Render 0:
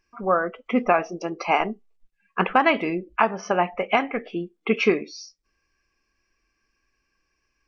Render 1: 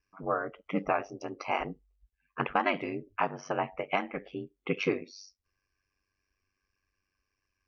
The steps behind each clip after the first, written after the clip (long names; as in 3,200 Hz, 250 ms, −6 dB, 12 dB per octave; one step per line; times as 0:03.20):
ring modulation 48 Hz
level −6.5 dB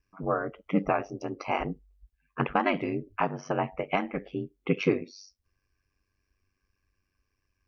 low-shelf EQ 350 Hz +9 dB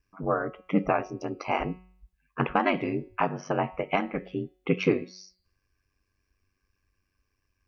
hum removal 184.1 Hz, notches 26
level +1.5 dB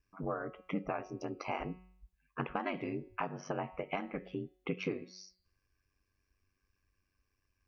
downward compressor 2.5 to 1, threshold −32 dBFS, peak gain reduction 10.5 dB
level −4 dB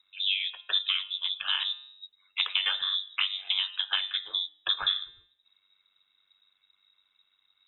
voice inversion scrambler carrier 3,800 Hz
level +8.5 dB